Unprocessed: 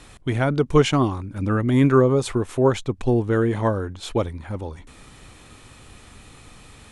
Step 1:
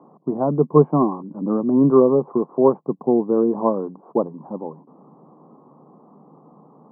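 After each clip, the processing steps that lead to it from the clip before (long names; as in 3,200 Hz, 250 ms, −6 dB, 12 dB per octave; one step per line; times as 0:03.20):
Chebyshev band-pass filter 150–1,100 Hz, order 5
level +3.5 dB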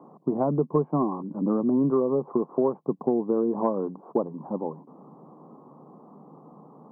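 downward compressor 6 to 1, threshold −20 dBFS, peak gain reduction 12.5 dB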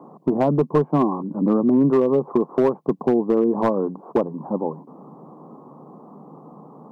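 gain into a clipping stage and back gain 16.5 dB
level +6 dB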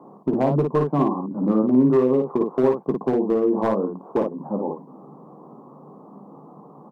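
ambience of single reflections 15 ms −8.5 dB, 55 ms −4 dB
level −3 dB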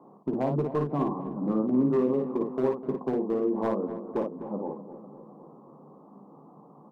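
feedback echo with a low-pass in the loop 252 ms, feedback 61%, low-pass 1,700 Hz, level −12 dB
level −7.5 dB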